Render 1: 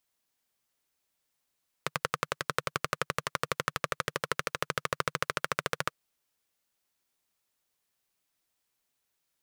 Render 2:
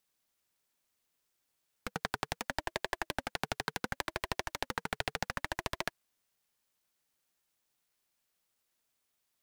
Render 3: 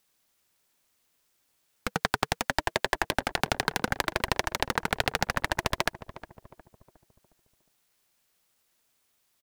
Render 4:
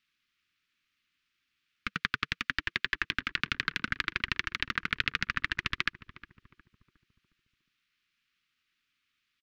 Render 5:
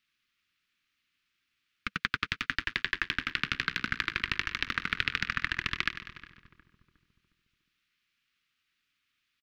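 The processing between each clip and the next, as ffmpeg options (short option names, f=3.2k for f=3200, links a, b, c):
-af "aeval=exprs='0.119*(abs(mod(val(0)/0.119+3,4)-2)-1)':c=same,aeval=exprs='val(0)*sin(2*PI*400*n/s+400*0.3/0.7*sin(2*PI*0.7*n/s))':c=same,volume=2.5dB"
-filter_complex "[0:a]asplit=2[a][b];[b]adelay=360,lowpass=f=960:p=1,volume=-13dB,asplit=2[c][d];[d]adelay=360,lowpass=f=960:p=1,volume=0.49,asplit=2[e][f];[f]adelay=360,lowpass=f=960:p=1,volume=0.49,asplit=2[g][h];[h]adelay=360,lowpass=f=960:p=1,volume=0.49,asplit=2[i][j];[j]adelay=360,lowpass=f=960:p=1,volume=0.49[k];[a][c][e][g][i][k]amix=inputs=6:normalize=0,volume=8.5dB"
-af "firequalizer=gain_entry='entry(290,0);entry(690,-30);entry(1200,4);entry(2500,10);entry(8500,-16)':delay=0.05:min_phase=1,volume=-7dB"
-af "aecho=1:1:98|196|294|392|490|588:0.251|0.146|0.0845|0.049|0.0284|0.0165"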